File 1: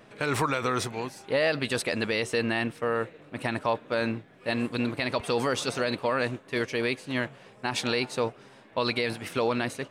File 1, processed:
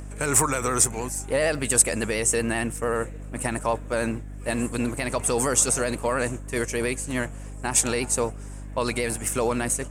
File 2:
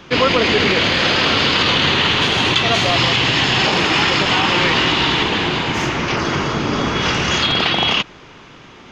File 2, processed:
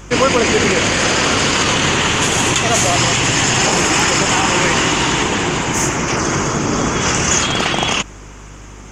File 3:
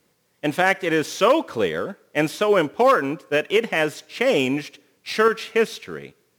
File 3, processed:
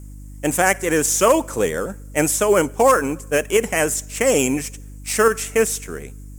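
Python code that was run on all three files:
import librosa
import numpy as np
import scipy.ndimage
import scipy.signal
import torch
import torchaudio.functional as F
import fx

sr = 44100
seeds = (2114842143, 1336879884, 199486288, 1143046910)

y = fx.high_shelf_res(x, sr, hz=5600.0, db=12.5, q=3.0)
y = fx.vibrato(y, sr, rate_hz=13.0, depth_cents=40.0)
y = fx.dmg_buzz(y, sr, base_hz=50.0, harmonics=6, level_db=-39.0, tilt_db=-7, odd_only=False)
y = F.gain(torch.from_numpy(y), 2.0).numpy()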